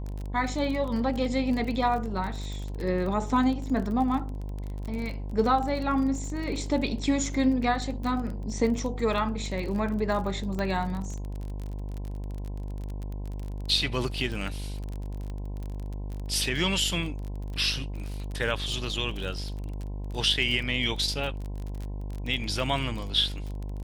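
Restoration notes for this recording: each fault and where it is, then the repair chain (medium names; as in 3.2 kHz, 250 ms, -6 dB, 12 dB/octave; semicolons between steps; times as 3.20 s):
buzz 50 Hz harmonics 21 -34 dBFS
crackle 31 per s -32 dBFS
10.59 s: pop -19 dBFS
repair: de-click; de-hum 50 Hz, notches 21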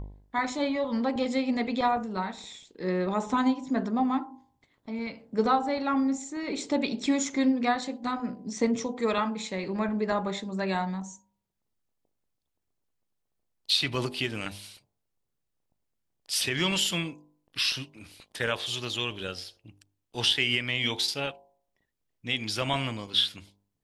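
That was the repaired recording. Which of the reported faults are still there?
nothing left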